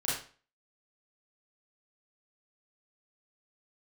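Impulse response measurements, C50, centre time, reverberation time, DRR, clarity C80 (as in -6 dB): 1.5 dB, 52 ms, 0.40 s, -8.5 dB, 7.5 dB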